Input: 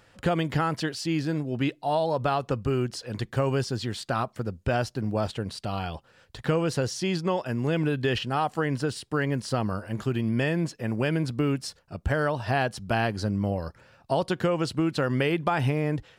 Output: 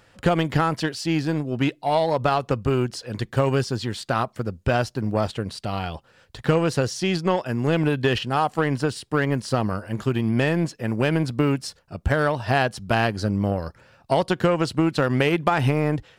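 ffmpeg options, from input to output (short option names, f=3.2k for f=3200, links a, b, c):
-af "aeval=exprs='0.316*(cos(1*acos(clip(val(0)/0.316,-1,1)))-cos(1*PI/2))+0.0141*(cos(7*acos(clip(val(0)/0.316,-1,1)))-cos(7*PI/2))':c=same,volume=5.5dB"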